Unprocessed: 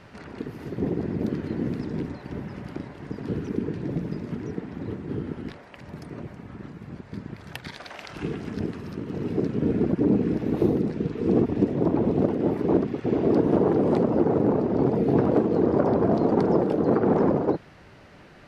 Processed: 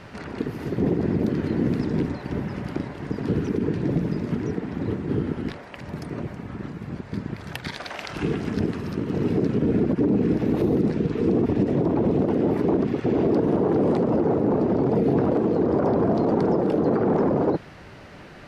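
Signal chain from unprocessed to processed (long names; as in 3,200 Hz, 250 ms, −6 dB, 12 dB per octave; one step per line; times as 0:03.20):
brickwall limiter −19 dBFS, peak gain reduction 11 dB
level +6 dB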